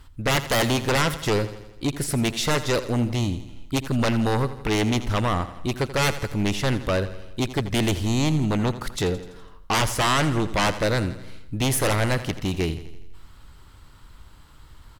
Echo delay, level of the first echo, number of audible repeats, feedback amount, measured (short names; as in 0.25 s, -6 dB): 83 ms, -14.0 dB, 5, 57%